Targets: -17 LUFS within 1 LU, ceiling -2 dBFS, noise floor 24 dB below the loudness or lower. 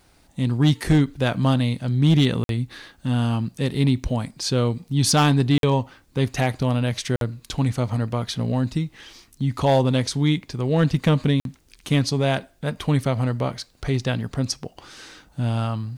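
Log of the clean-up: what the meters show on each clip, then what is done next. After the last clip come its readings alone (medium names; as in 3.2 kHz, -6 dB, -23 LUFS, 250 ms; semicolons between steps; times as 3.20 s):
clipped samples 0.6%; clipping level -11.0 dBFS; dropouts 4; longest dropout 52 ms; loudness -22.5 LUFS; peak level -11.0 dBFS; loudness target -17.0 LUFS
-> clip repair -11 dBFS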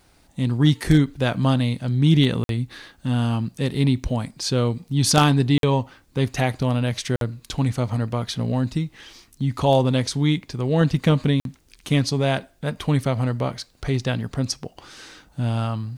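clipped samples 0.0%; dropouts 4; longest dropout 52 ms
-> interpolate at 2.44/5.58/7.16/11.40 s, 52 ms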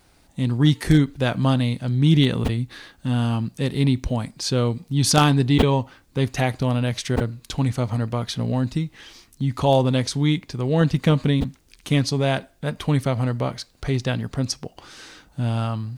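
dropouts 0; loudness -22.0 LUFS; peak level -2.0 dBFS; loudness target -17.0 LUFS
-> trim +5 dB; peak limiter -2 dBFS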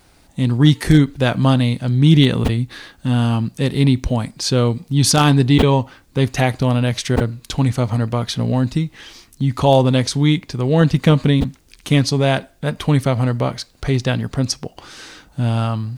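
loudness -17.5 LUFS; peak level -2.0 dBFS; noise floor -52 dBFS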